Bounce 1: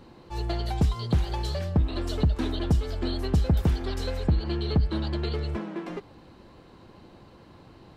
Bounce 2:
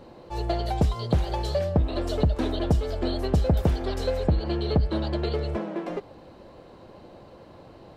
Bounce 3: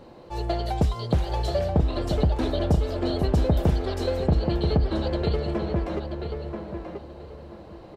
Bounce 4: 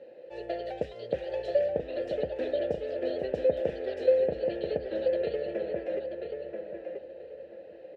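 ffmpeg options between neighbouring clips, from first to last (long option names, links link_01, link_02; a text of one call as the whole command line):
ffmpeg -i in.wav -af "equalizer=frequency=580:width=1.6:gain=10" out.wav
ffmpeg -i in.wav -filter_complex "[0:a]asplit=2[link_01][link_02];[link_02]adelay=983,lowpass=frequency=2600:poles=1,volume=-5dB,asplit=2[link_03][link_04];[link_04]adelay=983,lowpass=frequency=2600:poles=1,volume=0.28,asplit=2[link_05][link_06];[link_06]adelay=983,lowpass=frequency=2600:poles=1,volume=0.28,asplit=2[link_07][link_08];[link_08]adelay=983,lowpass=frequency=2600:poles=1,volume=0.28[link_09];[link_01][link_03][link_05][link_07][link_09]amix=inputs=5:normalize=0" out.wav
ffmpeg -i in.wav -filter_complex "[0:a]asplit=3[link_01][link_02][link_03];[link_01]bandpass=frequency=530:width_type=q:width=8,volume=0dB[link_04];[link_02]bandpass=frequency=1840:width_type=q:width=8,volume=-6dB[link_05];[link_03]bandpass=frequency=2480:width_type=q:width=8,volume=-9dB[link_06];[link_04][link_05][link_06]amix=inputs=3:normalize=0,volume=6.5dB" out.wav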